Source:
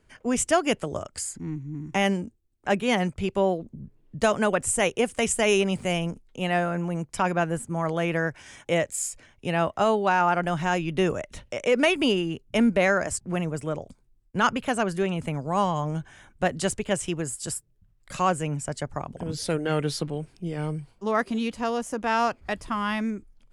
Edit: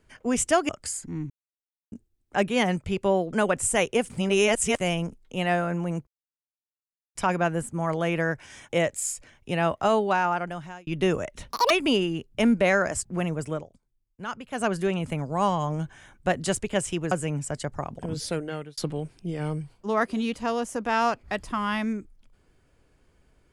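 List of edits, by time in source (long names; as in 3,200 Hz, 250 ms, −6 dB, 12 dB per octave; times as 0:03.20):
0:00.69–0:01.01: remove
0:01.62–0:02.24: silence
0:03.65–0:04.37: remove
0:05.14–0:05.84: reverse
0:07.11: splice in silence 1.08 s
0:09.98–0:10.83: fade out
0:11.46–0:11.86: play speed 196%
0:13.68–0:14.80: duck −12 dB, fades 0.14 s
0:17.27–0:18.29: remove
0:19.36–0:19.95: fade out linear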